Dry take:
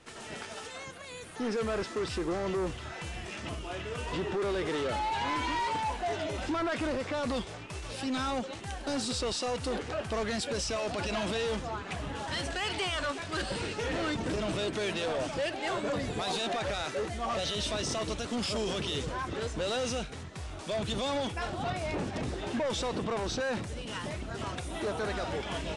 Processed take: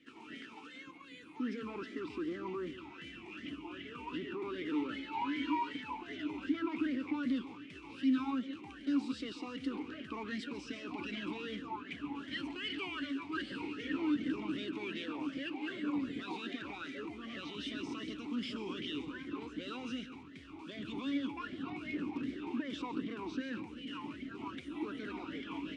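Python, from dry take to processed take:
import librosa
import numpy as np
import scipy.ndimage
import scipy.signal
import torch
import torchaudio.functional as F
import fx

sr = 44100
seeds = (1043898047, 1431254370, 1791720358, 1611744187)

y = x + 10.0 ** (-13.0 / 20.0) * np.pad(x, (int(140 * sr / 1000.0), 0))[:len(x)]
y = fx.vowel_sweep(y, sr, vowels='i-u', hz=2.6)
y = F.gain(torch.from_numpy(y), 6.0).numpy()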